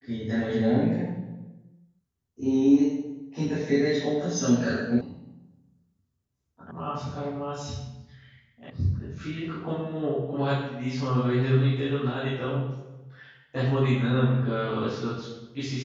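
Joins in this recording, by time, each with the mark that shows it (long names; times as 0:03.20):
0:05.01: cut off before it has died away
0:06.71: cut off before it has died away
0:08.70: cut off before it has died away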